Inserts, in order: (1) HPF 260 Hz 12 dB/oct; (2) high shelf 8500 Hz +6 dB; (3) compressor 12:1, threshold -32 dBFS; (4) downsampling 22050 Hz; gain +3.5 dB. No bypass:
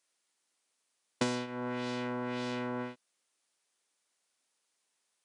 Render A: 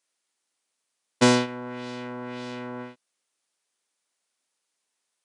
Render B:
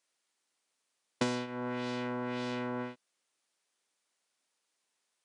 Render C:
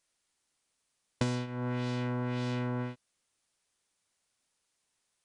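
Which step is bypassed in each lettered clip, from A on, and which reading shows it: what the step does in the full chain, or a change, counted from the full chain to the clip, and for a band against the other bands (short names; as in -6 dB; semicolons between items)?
3, mean gain reduction 2.5 dB; 2, 8 kHz band -2.0 dB; 1, 125 Hz band +13.0 dB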